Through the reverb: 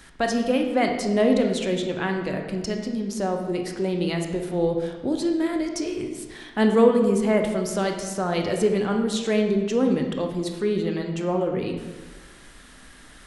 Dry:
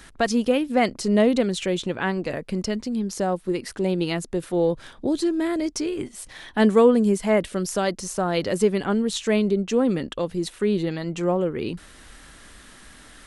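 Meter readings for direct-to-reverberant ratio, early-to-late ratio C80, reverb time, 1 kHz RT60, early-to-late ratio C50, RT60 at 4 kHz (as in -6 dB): 3.0 dB, 7.5 dB, 1.3 s, 1.3 s, 5.0 dB, 0.95 s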